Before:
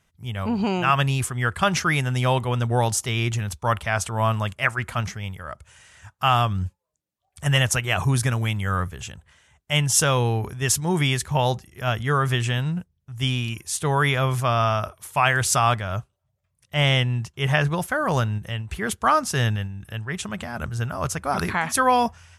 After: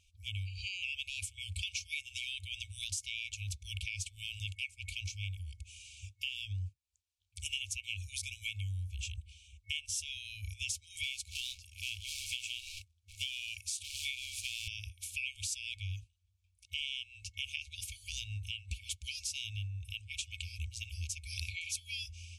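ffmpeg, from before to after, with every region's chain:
ffmpeg -i in.wav -filter_complex "[0:a]asettb=1/sr,asplit=3[link_01][link_02][link_03];[link_01]atrim=end=8.944[link_04];[link_02]atrim=start=8.94:end=10.17,asetpts=PTS-STARTPTS,afade=type=in:duration=0.004:curve=qsin,afade=type=out:start_time=1.226:duration=0.004:curve=qsin,lowshelf=frequency=100:gain=8,bandreject=frequency=6800:width=22[link_05];[link_03]atrim=start=10.166[link_06];[link_04][link_05]acrossfade=duration=0.004:curve1=hsin:curve2=qsin[link_07];[link_07][link_06]acrossfade=duration=0.004:curve1=qsin:curve2=hsin,asettb=1/sr,asplit=3[link_08][link_09][link_10];[link_08]atrim=end=11.034[link_11];[link_09]atrim=start=11.03:end=14.68,asetpts=PTS-STARTPTS,afade=type=in:duration=0.004:curve=qsin,afade=type=out:start_time=3.646:duration=0.004:curve=qsin,highpass=87,acrusher=bits=3:mode=log:mix=0:aa=0.000001[link_12];[link_10]atrim=start=14.676[link_13];[link_11][link_12]acrossfade=duration=0.004:curve1=hsin:curve2=qsin[link_14];[link_14][link_13]acrossfade=duration=0.004:curve1=qsin:curve2=hsin,afftfilt=real='re*(1-between(b*sr/4096,100,2200))':imag='im*(1-between(b*sr/4096,100,2200))':win_size=4096:overlap=0.75,lowpass=8400,acompressor=threshold=-38dB:ratio=6,volume=1.5dB" out.wav

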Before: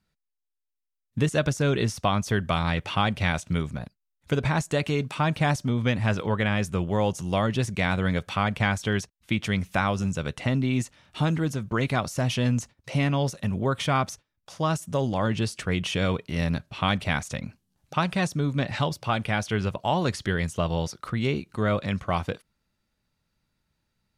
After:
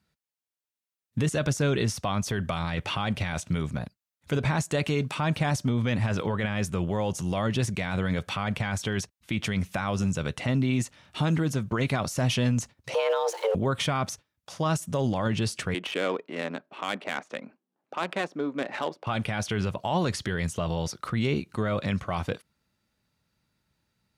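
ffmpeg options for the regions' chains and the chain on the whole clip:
ffmpeg -i in.wav -filter_complex "[0:a]asettb=1/sr,asplit=3[link_01][link_02][link_03];[link_01]atrim=end=12.944[link_04];[link_02]atrim=start=12.94:end=13.55,asetpts=PTS-STARTPTS,afade=type=in:duration=0.004:curve=qsin,afade=type=out:start_time=0.606:duration=0.004:curve=qsin,aeval=exprs='val(0)+0.5*0.0106*sgn(val(0))':channel_layout=same,highshelf=frequency=6800:gain=-8,afreqshift=340[link_05];[link_03]atrim=start=13.546[link_06];[link_04][link_05]acrossfade=duration=0.004:curve1=hsin:curve2=qsin[link_07];[link_07][link_06]acrossfade=duration=0.004:curve1=qsin:curve2=hsin,asettb=1/sr,asplit=3[link_08][link_09][link_10];[link_08]atrim=end=15.744[link_11];[link_09]atrim=start=15.74:end=19.07,asetpts=PTS-STARTPTS,afade=type=in:duration=0.004:curve=qsin,afade=type=out:start_time=3.326:duration=0.004:curve=qsin,highpass=frequency=280:width=0.5412,highpass=frequency=280:width=1.3066,highshelf=frequency=10000:gain=12,adynamicsmooth=sensitivity=1.5:basefreq=1400[link_12];[link_10]atrim=start=19.066[link_13];[link_11][link_12]acrossfade=duration=0.004:curve1=hsin:curve2=qsin[link_14];[link_14][link_13]acrossfade=duration=0.004:curve1=qsin:curve2=hsin,highpass=61,alimiter=limit=-19.5dB:level=0:latency=1:release=19,volume=2dB" out.wav

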